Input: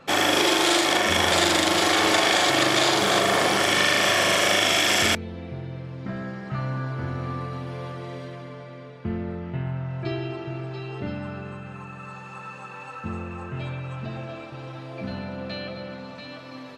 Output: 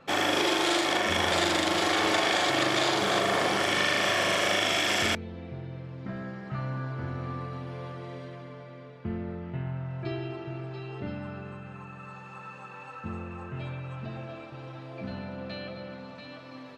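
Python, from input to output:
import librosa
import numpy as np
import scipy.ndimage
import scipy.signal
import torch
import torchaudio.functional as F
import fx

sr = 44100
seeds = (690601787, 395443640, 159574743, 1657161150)

y = fx.high_shelf(x, sr, hz=6400.0, db=-7.5)
y = y * 10.0 ** (-4.5 / 20.0)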